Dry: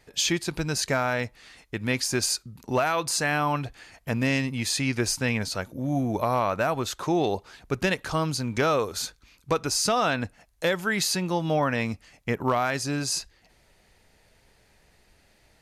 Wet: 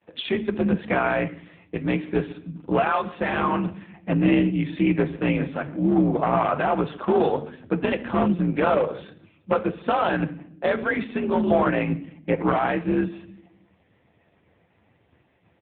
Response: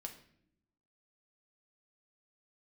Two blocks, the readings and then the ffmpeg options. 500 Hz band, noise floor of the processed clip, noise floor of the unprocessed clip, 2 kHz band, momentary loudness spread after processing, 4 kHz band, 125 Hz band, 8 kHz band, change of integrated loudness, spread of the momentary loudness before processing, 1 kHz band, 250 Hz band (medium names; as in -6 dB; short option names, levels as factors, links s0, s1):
+4.0 dB, -64 dBFS, -62 dBFS, -0.5 dB, 9 LU, -9.0 dB, +2.0 dB, under -40 dB, +2.5 dB, 8 LU, +3.0 dB, +6.5 dB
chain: -filter_complex "[0:a]agate=range=0.0224:threshold=0.00141:ratio=3:detection=peak,highshelf=f=2900:g=-10,afreqshift=51,aeval=exprs='clip(val(0),-1,0.0841)':c=same,aecho=1:1:136|272:0.0708|0.0177,asplit=2[s0][s1];[1:a]atrim=start_sample=2205[s2];[s1][s2]afir=irnorm=-1:irlink=0,volume=1.88[s3];[s0][s3]amix=inputs=2:normalize=0" -ar 8000 -c:a libopencore_amrnb -b:a 5150